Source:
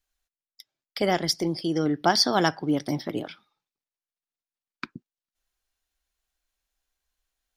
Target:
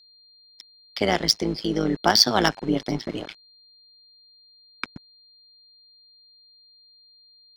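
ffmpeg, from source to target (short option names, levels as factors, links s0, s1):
-filter_complex "[0:a]acrossover=split=200|2100[s0][s1][s2];[s2]acontrast=48[s3];[s0][s1][s3]amix=inputs=3:normalize=0,tremolo=f=110:d=0.788,aeval=exprs='val(0)*gte(abs(val(0)),0.00794)':c=same,adynamicsmooth=sensitivity=2:basefreq=4900,aeval=exprs='val(0)+0.00141*sin(2*PI*4200*n/s)':c=same,volume=1.68"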